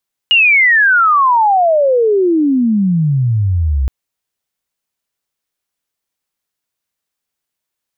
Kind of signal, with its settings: sweep logarithmic 2.9 kHz -> 63 Hz -6 dBFS -> -11 dBFS 3.57 s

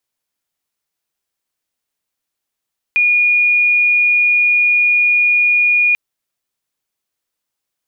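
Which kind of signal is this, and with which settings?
tone sine 2.44 kHz -9.5 dBFS 2.99 s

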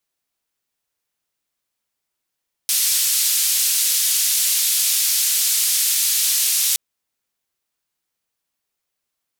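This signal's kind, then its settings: noise band 3.7–14 kHz, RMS -18.5 dBFS 4.07 s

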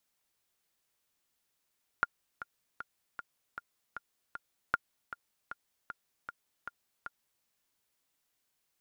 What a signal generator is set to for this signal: metronome 155 bpm, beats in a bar 7, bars 2, 1.41 kHz, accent 14 dB -13 dBFS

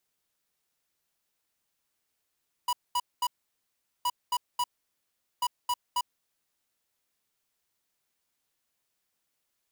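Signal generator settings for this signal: beep pattern square 978 Hz, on 0.05 s, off 0.22 s, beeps 3, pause 0.78 s, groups 3, -27 dBFS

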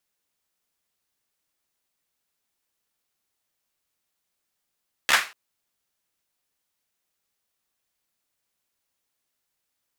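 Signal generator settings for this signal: hand clap length 0.24 s, bursts 4, apart 14 ms, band 1.7 kHz, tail 0.31 s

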